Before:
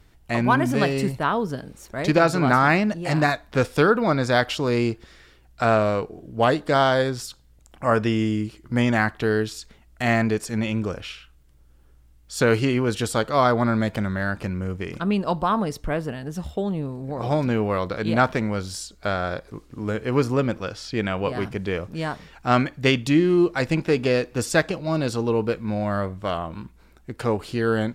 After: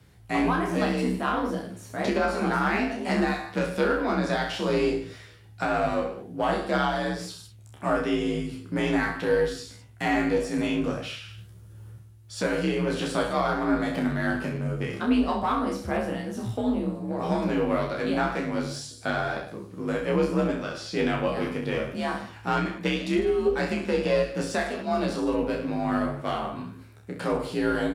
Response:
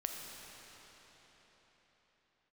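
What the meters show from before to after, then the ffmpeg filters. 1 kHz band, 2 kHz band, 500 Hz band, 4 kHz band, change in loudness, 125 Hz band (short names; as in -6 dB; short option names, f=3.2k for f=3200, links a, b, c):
-4.0 dB, -4.5 dB, -3.5 dB, -4.0 dB, -4.0 dB, -7.5 dB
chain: -filter_complex "[0:a]equalizer=f=10k:w=4.1:g=6.5,aecho=1:1:30|64.5|104.2|149.8|202.3:0.631|0.398|0.251|0.158|0.1,alimiter=limit=-11.5dB:level=0:latency=1:release=493,areverse,acompressor=mode=upward:threshold=-37dB:ratio=2.5,areverse,flanger=delay=8.4:depth=9.6:regen=79:speed=1.9:shape=sinusoidal,acrossover=split=5900[a][b];[b]acompressor=threshold=-50dB:ratio=4:attack=1:release=60[c];[a][c]amix=inputs=2:normalize=0,asplit=2[d][e];[e]aeval=exprs='clip(val(0),-1,0.0178)':c=same,volume=-5.5dB[f];[d][f]amix=inputs=2:normalize=0,asplit=2[g][h];[h]adelay=14,volume=-5dB[i];[g][i]amix=inputs=2:normalize=0,afreqshift=49,volume=-2.5dB"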